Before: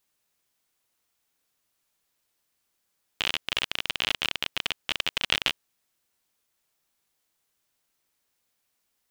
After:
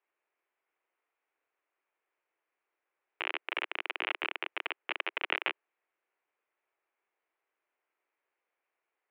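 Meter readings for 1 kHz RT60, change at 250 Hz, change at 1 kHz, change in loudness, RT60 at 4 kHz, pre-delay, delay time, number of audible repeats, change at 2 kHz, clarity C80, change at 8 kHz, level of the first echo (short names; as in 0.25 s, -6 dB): none, -8.0 dB, -1.0 dB, -7.0 dB, none, none, none, none, -3.0 dB, none, under -35 dB, none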